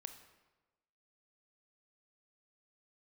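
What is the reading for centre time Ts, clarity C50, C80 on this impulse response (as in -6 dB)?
15 ms, 9.5 dB, 11.5 dB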